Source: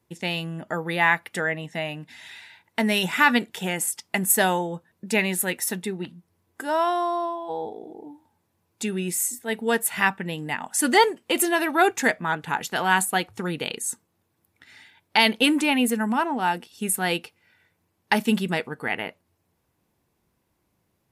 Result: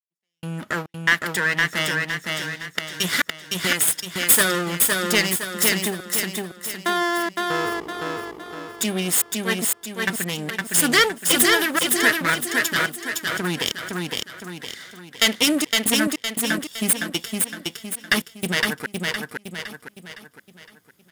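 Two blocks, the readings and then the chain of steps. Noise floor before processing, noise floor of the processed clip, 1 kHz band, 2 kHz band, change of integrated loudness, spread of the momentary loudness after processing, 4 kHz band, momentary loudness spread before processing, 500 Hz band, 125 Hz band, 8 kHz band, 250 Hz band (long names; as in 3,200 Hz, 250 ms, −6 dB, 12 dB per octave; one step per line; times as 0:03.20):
−73 dBFS, −57 dBFS, −3.5 dB, +3.5 dB, +2.5 dB, 16 LU, +6.5 dB, 13 LU, −0.5 dB, +2.0 dB, +6.5 dB, 0.0 dB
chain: lower of the sound and its delayed copy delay 0.6 ms
high-pass filter 120 Hz 12 dB per octave
high-shelf EQ 2,200 Hz +8.5 dB
in parallel at −1.5 dB: downward compressor, threshold −28 dBFS, peak gain reduction 17.5 dB
on the sum: gate pattern "..xx.xxxxx.xx.x" 70 BPM −60 dB
soft clipping −5.5 dBFS, distortion −19 dB
on a send: repeating echo 512 ms, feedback 44%, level −3 dB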